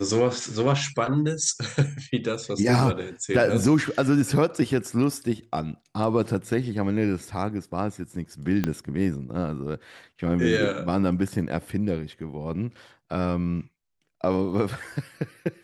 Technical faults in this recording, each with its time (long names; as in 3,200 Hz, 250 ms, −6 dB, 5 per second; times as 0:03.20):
0:08.64: click −11 dBFS